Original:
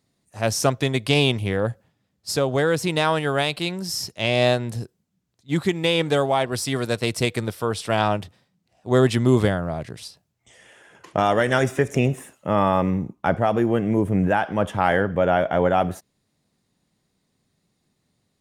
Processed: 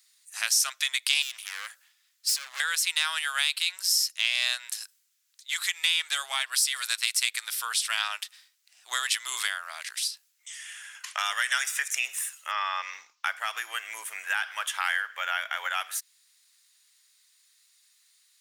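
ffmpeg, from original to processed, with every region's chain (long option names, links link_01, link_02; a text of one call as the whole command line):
ffmpeg -i in.wav -filter_complex "[0:a]asettb=1/sr,asplit=3[link_01][link_02][link_03];[link_01]atrim=end=1.224[link_04];[link_02]atrim=start=1.22:end=2.6,asetpts=PTS-STARTPTS,afade=type=in:duration=0.004:curve=qsin,afade=type=out:start_time=1.376:duration=0.004:curve=qsin,acompressor=threshold=-23dB:ratio=3:attack=3.2:release=140:knee=1:detection=peak,asoftclip=type=hard:threshold=-27.5dB[link_05];[link_03]atrim=start=2.596[link_06];[link_04][link_05]acrossfade=duration=0.004:curve1=hsin:curve2=qsin[link_07];[link_07][link_06]acrossfade=duration=0.004:curve1=qsin:curve2=hsin,asettb=1/sr,asplit=3[link_08][link_09][link_10];[link_08]atrim=end=12.514[link_11];[link_09]atrim=start=12.51:end=13.24,asetpts=PTS-STARTPTS,afade=type=in:duration=0.004:curve=qsin,afade=type=out:start_time=0.726:duration=0.004:curve=qsin,acrossover=split=2900[link_12][link_13];[link_13]acompressor=threshold=-51dB:ratio=4:attack=1:release=60[link_14];[link_12][link_14]amix=inputs=2:normalize=0,highshelf=frequency=7500:width_type=q:width=3:gain=-13[link_15];[link_10]atrim=start=13.236[link_16];[link_11][link_15]acrossfade=duration=0.004:curve1=hsin:curve2=qsin[link_17];[link_17][link_16]acrossfade=duration=0.004:curve1=qsin:curve2=hsin,highpass=frequency=1400:width=0.5412,highpass=frequency=1400:width=1.3066,highshelf=frequency=3500:gain=11.5,acompressor=threshold=-35dB:ratio=2,volume=5.5dB" out.wav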